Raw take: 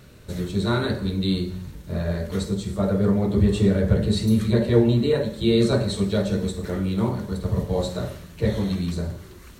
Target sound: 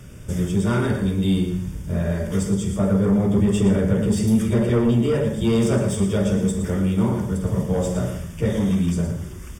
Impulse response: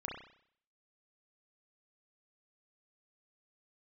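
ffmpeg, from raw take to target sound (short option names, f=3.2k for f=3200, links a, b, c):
-filter_complex "[0:a]equalizer=f=8.4k:t=o:w=1.5:g=10,aecho=1:1:115:0.335,acrossover=split=180[a][b];[a]acompressor=threshold=-34dB:ratio=6[c];[b]asoftclip=type=tanh:threshold=-18.5dB[d];[c][d]amix=inputs=2:normalize=0,asuperstop=centerf=4100:order=12:qfactor=4.6,bass=f=250:g=8,treble=f=4k:g=-4,bandreject=f=70.22:t=h:w=4,bandreject=f=140.44:t=h:w=4,bandreject=f=210.66:t=h:w=4,bandreject=f=280.88:t=h:w=4,bandreject=f=351.1:t=h:w=4,bandreject=f=421.32:t=h:w=4,bandreject=f=491.54:t=h:w=4,bandreject=f=561.76:t=h:w=4,bandreject=f=631.98:t=h:w=4,bandreject=f=702.2:t=h:w=4,bandreject=f=772.42:t=h:w=4,bandreject=f=842.64:t=h:w=4,bandreject=f=912.86:t=h:w=4,bandreject=f=983.08:t=h:w=4,bandreject=f=1.0533k:t=h:w=4,bandreject=f=1.12352k:t=h:w=4,bandreject=f=1.19374k:t=h:w=4,bandreject=f=1.26396k:t=h:w=4,bandreject=f=1.33418k:t=h:w=4,bandreject=f=1.4044k:t=h:w=4,bandreject=f=1.47462k:t=h:w=4,bandreject=f=1.54484k:t=h:w=4,bandreject=f=1.61506k:t=h:w=4,bandreject=f=1.68528k:t=h:w=4,bandreject=f=1.7555k:t=h:w=4,bandreject=f=1.82572k:t=h:w=4,bandreject=f=1.89594k:t=h:w=4,bandreject=f=1.96616k:t=h:w=4,bandreject=f=2.03638k:t=h:w=4,bandreject=f=2.1066k:t=h:w=4,bandreject=f=2.17682k:t=h:w=4,bandreject=f=2.24704k:t=h:w=4,bandreject=f=2.31726k:t=h:w=4,bandreject=f=2.38748k:t=h:w=4,bandreject=f=2.4577k:t=h:w=4,volume=2dB"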